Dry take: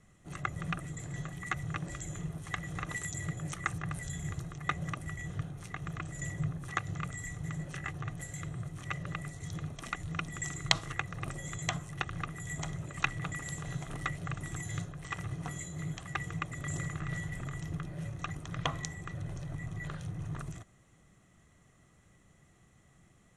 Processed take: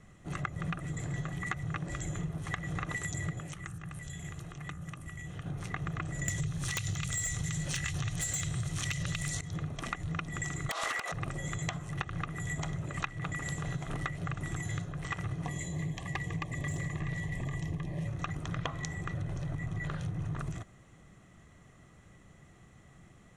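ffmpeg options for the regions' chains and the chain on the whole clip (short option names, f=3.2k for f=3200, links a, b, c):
-filter_complex "[0:a]asettb=1/sr,asplit=3[a][b][c];[a]atrim=end=3.404[d];[b]atrim=start=3.4:end=5.46,asetpts=PTS-STARTPTS,afade=t=in:d=0.004:c=qsin,afade=t=out:st=2.056:d=0.004:c=qsin,bandreject=f=51.15:t=h:w=4,bandreject=f=102.3:t=h:w=4,bandreject=f=153.45:t=h:w=4,bandreject=f=204.6:t=h:w=4,bandreject=f=255.75:t=h:w=4,bandreject=f=306.9:t=h:w=4,bandreject=f=358.05:t=h:w=4,bandreject=f=409.2:t=h:w=4,bandreject=f=460.35:t=h:w=4,bandreject=f=511.5:t=h:w=4,bandreject=f=562.65:t=h:w=4,bandreject=f=613.8:t=h:w=4,bandreject=f=664.95:t=h:w=4,bandreject=f=716.1:t=h:w=4,bandreject=f=767.25:t=h:w=4,bandreject=f=818.4:t=h:w=4,bandreject=f=869.55:t=h:w=4,bandreject=f=920.7:t=h:w=4,bandreject=f=971.85:t=h:w=4,bandreject=f=1.023k:t=h:w=4,bandreject=f=1.07415k:t=h:w=4,bandreject=f=1.1253k:t=h:w=4,bandreject=f=1.17645k:t=h:w=4,bandreject=f=1.2276k:t=h:w=4,bandreject=f=1.27875k:t=h:w=4,bandreject=f=1.3299k:t=h:w=4,bandreject=f=1.38105k:t=h:w=4,bandreject=f=1.4322k:t=h:w=4,bandreject=f=1.48335k:t=h:w=4,bandreject=f=1.5345k:t=h:w=4,bandreject=f=1.58565k:t=h:w=4,bandreject=f=1.6368k:t=h:w=4,bandreject=f=1.68795k:t=h:w=4,bandreject=f=1.7391k:t=h:w=4,bandreject=f=1.79025k:t=h:w=4,acrossover=split=290|7500[e][f][g];[e]acompressor=threshold=-49dB:ratio=4[h];[f]acompressor=threshold=-55dB:ratio=4[i];[g]acompressor=threshold=-54dB:ratio=4[j];[h][i][j]amix=inputs=3:normalize=0,equalizer=f=2.8k:t=o:w=0.61:g=6[k];[c]atrim=start=5.456[l];[d][k]acrossfade=d=0.004:c1=hsin:c2=qsin[m];[m][l]acrossfade=d=0.004:c1=qsin:c2=hsin,asettb=1/sr,asplit=3[n][o][p];[n]atrim=end=6.284[q];[o]atrim=start=6.28:end=9.41,asetpts=PTS-STARTPTS,afade=t=in:d=0.004:c=qsin,afade=t=out:st=3.126:d=0.004:c=qsin,equalizer=f=5.8k:w=0.33:g=14,acrossover=split=140|3000[r][s][t];[s]acompressor=threshold=-48dB:ratio=6:attack=3.2:release=140:knee=2.83:detection=peak[u];[r][u][t]amix=inputs=3:normalize=0,aeval=exprs='0.158*sin(PI/2*3.55*val(0)/0.158)':c=same[v];[p]atrim=start=9.406[w];[q][v]acrossfade=d=0.004:c1=hsin:c2=qsin[x];[x][w]acrossfade=d=0.004:c1=qsin:c2=hsin,asettb=1/sr,asplit=3[y][z][aa];[y]atrim=end=10.694[ab];[z]atrim=start=10.69:end=11.12,asetpts=PTS-STARTPTS,afade=t=in:d=0.004:c=qsin,afade=t=out:st=0.426:d=0.004:c=qsin,highpass=f=550:w=0.5412,highpass=f=550:w=1.3066,acompressor=threshold=-41dB:ratio=12:attack=3.2:release=140:knee=1:detection=peak,aeval=exprs='0.0631*sin(PI/2*7.08*val(0)/0.0631)':c=same[ac];[aa]atrim=start=11.116[ad];[ab][ac]acrossfade=d=0.004:c1=hsin:c2=qsin[ae];[ae][ad]acrossfade=d=0.004:c1=qsin:c2=hsin,asettb=1/sr,asplit=3[af][ag][ah];[af]atrim=end=15.454[ai];[ag]atrim=start=15.45:end=18.07,asetpts=PTS-STARTPTS,afade=t=in:d=0.004:c=qsin,afade=t=out:st=2.616:d=0.004:c=qsin,asuperstop=centerf=1400:order=12:qfactor=3.1,aeval=exprs='clip(val(0),-1,0.0237)':c=same[aj];[ah]atrim=start=18.066[ak];[ai][aj]acrossfade=d=0.004:c1=hsin:c2=qsin[al];[al][ak]acrossfade=d=0.004:c1=qsin:c2=hsin,highshelf=f=6.6k:g=-9,acompressor=threshold=-38dB:ratio=10,volume=6.5dB"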